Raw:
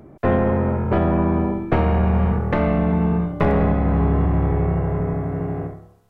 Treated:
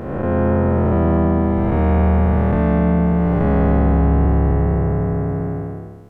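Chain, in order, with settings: spectral blur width 474 ms; formant shift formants -2 st; trim +4.5 dB

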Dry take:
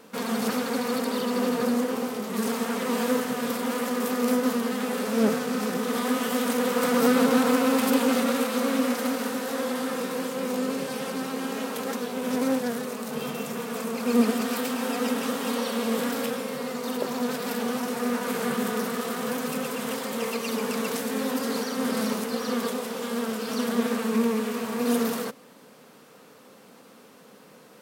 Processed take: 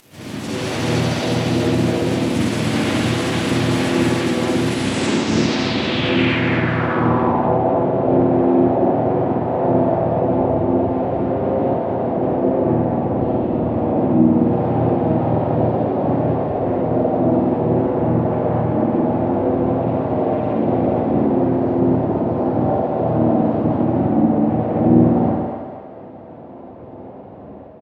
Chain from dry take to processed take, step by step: high-order bell 970 Hz -9.5 dB; comb 5.3 ms, depth 37%; in parallel at -3 dB: compression 16:1, threshold -39 dBFS, peak gain reduction 24 dB; on the sum: peak limiter -21 dBFS, peak gain reduction 11 dB; level rider gain up to 11 dB; formant-preserving pitch shift -12 st; spring tank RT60 1.2 s, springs 50 ms, chirp 45 ms, DRR -8 dB; crackle 400 per s -31 dBFS; harmony voices -5 st -8 dB, +5 st -2 dB, +7 st -12 dB; on a send: thinning echo 239 ms, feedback 51%, high-pass 560 Hz, level -6 dB; on the sum: low-pass sweep 14 kHz -> 720 Hz, 4.50–7.60 s; trim -10 dB

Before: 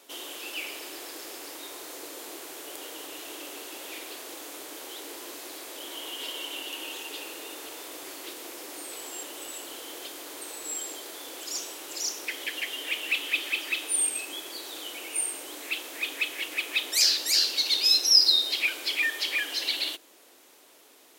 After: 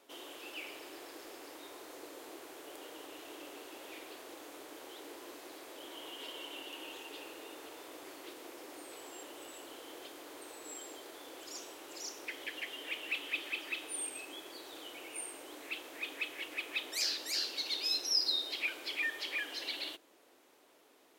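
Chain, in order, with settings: treble shelf 2.9 kHz -10 dB; trim -5 dB

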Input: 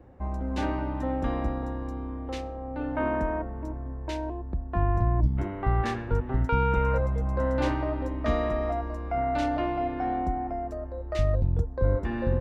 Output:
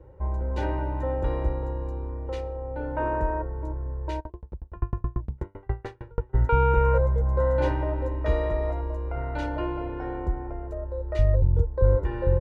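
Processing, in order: treble shelf 2 kHz -10 dB; comb 2.1 ms, depth 87%; 4.19–6.33 s: sawtooth tremolo in dB decaying 12 Hz -> 5.3 Hz, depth 38 dB

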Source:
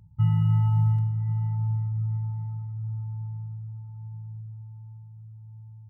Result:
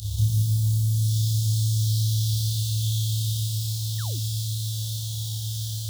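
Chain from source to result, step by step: upward compressor, threshold -30 dBFS; bit crusher 8-bit; FFT filter 110 Hz 0 dB, 240 Hz -21 dB, 660 Hz -13 dB, 1.4 kHz -26 dB, 2.2 kHz -29 dB, 3.4 kHz +14 dB; peak limiter -24.5 dBFS, peak gain reduction 9.5 dB; peaking EQ 84 Hz +9.5 dB 0.69 oct; on a send: flutter echo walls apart 5 m, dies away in 1.2 s; on the sum: painted sound fall, 3.98–4.20 s, 210–2000 Hz -48 dBFS; trim +3.5 dB

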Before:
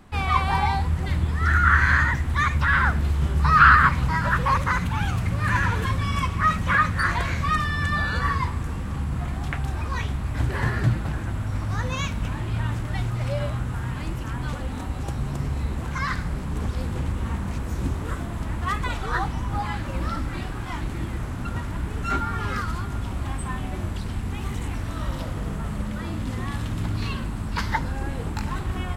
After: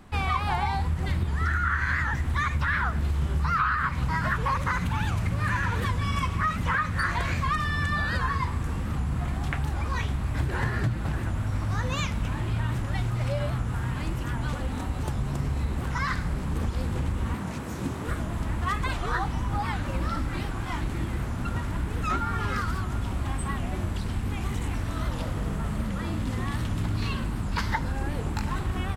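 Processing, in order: 17.34–18.07 s: high-pass 130 Hz 12 dB/octave; compression 8:1, threshold -22 dBFS, peak gain reduction 13 dB; warped record 78 rpm, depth 160 cents

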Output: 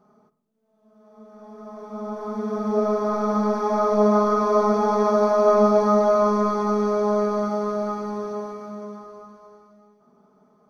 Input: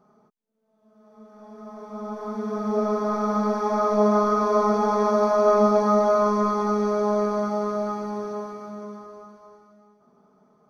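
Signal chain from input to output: on a send: reverberation RT60 0.80 s, pre-delay 5 ms, DRR 12 dB

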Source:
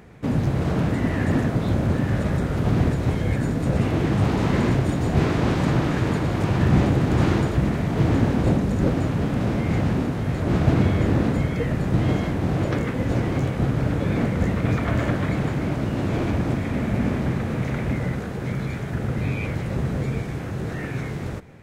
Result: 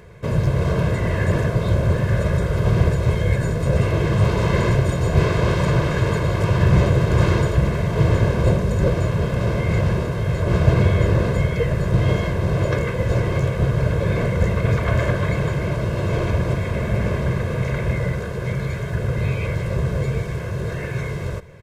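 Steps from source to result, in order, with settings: comb 1.9 ms, depth 84%; trim +1 dB

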